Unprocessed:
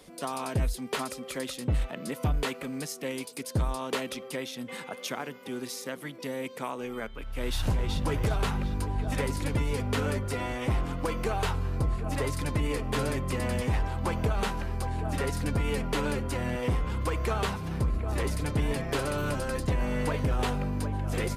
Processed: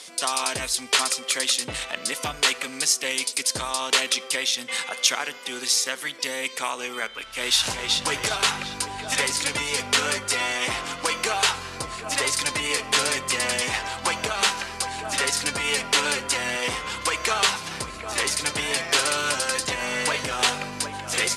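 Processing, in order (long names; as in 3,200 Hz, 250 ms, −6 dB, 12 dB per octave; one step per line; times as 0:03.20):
meter weighting curve ITU-R 468
convolution reverb RT60 1.0 s, pre-delay 3 ms, DRR 18.5 dB
level +7 dB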